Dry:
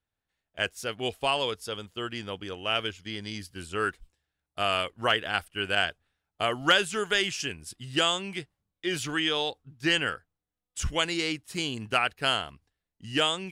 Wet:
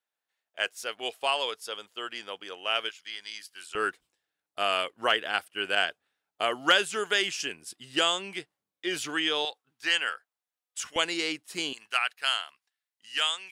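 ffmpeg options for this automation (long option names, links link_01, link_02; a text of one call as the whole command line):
ffmpeg -i in.wav -af "asetnsamples=nb_out_samples=441:pad=0,asendcmd='2.89 highpass f 1100;3.75 highpass f 300;9.45 highpass f 770;10.96 highpass f 320;11.73 highpass f 1200',highpass=530" out.wav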